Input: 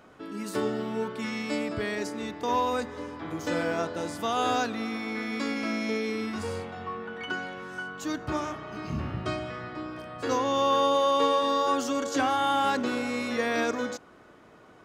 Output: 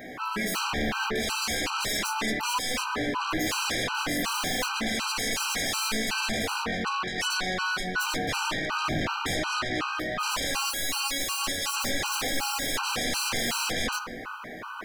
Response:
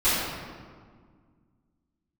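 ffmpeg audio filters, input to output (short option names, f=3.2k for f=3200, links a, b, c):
-filter_complex "[0:a]equalizer=f=250:t=o:w=1:g=5,equalizer=f=1k:t=o:w=1:g=9,equalizer=f=2k:t=o:w=1:g=9,equalizer=f=8k:t=o:w=1:g=-10,asettb=1/sr,asplit=3[a][b][c];[a]atrim=end=4.464[d];[b]atrim=start=4.46:end=4.87,asetpts=PTS-STARTPTS,afade=t=in:d=0.004:c=qsin,afade=t=out:st=0.406:d=0.004:c=qsin,aeval=exprs='0.178*(cos(1*acos(clip(val(0)/0.178,-1,1)))-cos(1*PI/2))+0.0224*(cos(3*acos(clip(val(0)/0.178,-1,1)))-cos(3*PI/2))':c=same[e];[c]atrim=start=4.866[f];[d][e]acrossfade=d=0.004:c1=hsin:c2=qsin[g];[g][f]acrossfade=d=0.004:c1=qsin:c2=hsin,crystalizer=i=4.5:c=0,asoftclip=type=tanh:threshold=-18.5dB,flanger=delay=16:depth=3.8:speed=0.27,aeval=exprs='0.112*sin(PI/2*3.98*val(0)/0.112)':c=same,asplit=2[h][i];[1:a]atrim=start_sample=2205,lowshelf=f=71:g=7[j];[i][j]afir=irnorm=-1:irlink=0,volume=-27dB[k];[h][k]amix=inputs=2:normalize=0,afftfilt=real='re*gt(sin(2*PI*2.7*pts/sr)*(1-2*mod(floor(b*sr/1024/790),2)),0)':imag='im*gt(sin(2*PI*2.7*pts/sr)*(1-2*mod(floor(b*sr/1024/790),2)),0)':win_size=1024:overlap=0.75,volume=-4.5dB"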